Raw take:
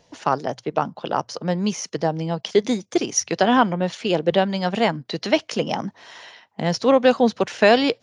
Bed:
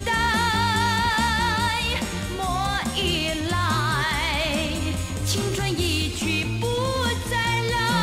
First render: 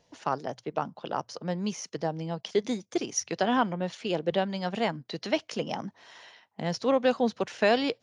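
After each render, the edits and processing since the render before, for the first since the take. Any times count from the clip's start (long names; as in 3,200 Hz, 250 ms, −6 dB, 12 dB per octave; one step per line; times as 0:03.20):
level −8.5 dB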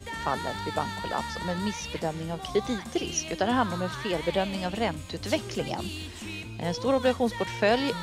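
mix in bed −13.5 dB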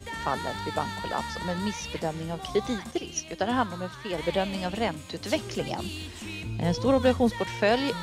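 0:02.91–0:04.18: expander for the loud parts, over −35 dBFS
0:04.88–0:05.35: high-pass filter 120 Hz
0:06.42–0:07.30: low-shelf EQ 230 Hz +9 dB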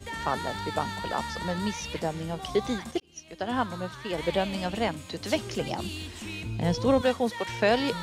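0:03.00–0:03.74: fade in
0:07.01–0:07.49: high-pass filter 420 Hz 6 dB per octave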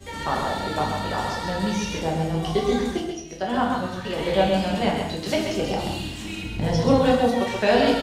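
on a send: single-tap delay 133 ms −5.5 dB
on the sum: rectangular room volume 150 cubic metres, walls mixed, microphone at 1.1 metres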